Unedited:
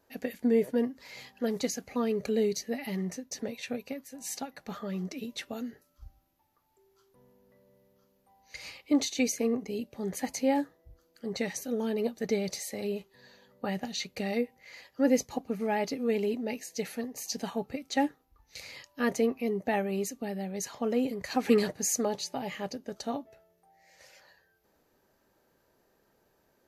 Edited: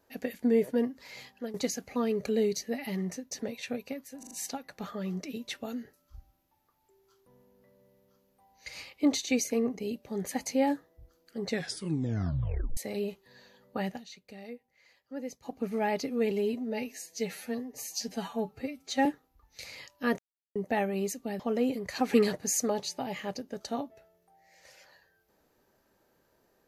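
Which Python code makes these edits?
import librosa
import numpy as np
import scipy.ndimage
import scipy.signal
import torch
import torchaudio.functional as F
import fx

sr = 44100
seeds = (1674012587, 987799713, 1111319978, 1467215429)

y = fx.edit(x, sr, fx.fade_out_to(start_s=1.11, length_s=0.43, curve='qsin', floor_db=-14.5),
    fx.stutter(start_s=4.19, slice_s=0.04, count=4),
    fx.tape_stop(start_s=11.37, length_s=1.28),
    fx.fade_down_up(start_s=13.74, length_s=1.75, db=-14.0, fade_s=0.19),
    fx.stretch_span(start_s=16.19, length_s=1.83, factor=1.5),
    fx.silence(start_s=19.15, length_s=0.37),
    fx.cut(start_s=20.36, length_s=0.39), tone=tone)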